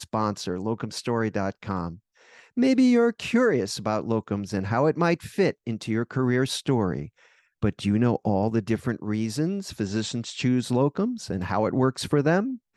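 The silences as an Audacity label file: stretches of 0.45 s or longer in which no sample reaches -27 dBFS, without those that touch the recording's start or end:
1.890000	2.570000	silence
7.030000	7.630000	silence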